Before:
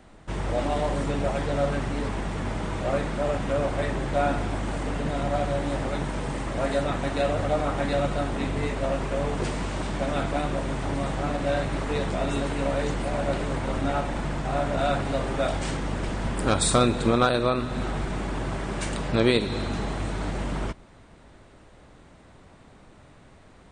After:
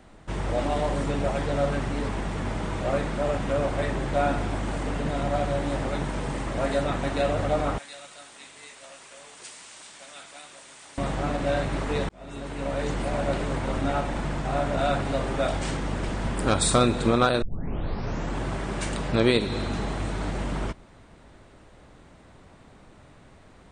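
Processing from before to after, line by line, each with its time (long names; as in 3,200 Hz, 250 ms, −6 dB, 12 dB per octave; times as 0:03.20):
0:07.78–0:10.98: first difference
0:12.09–0:12.99: fade in linear
0:17.42: tape start 0.98 s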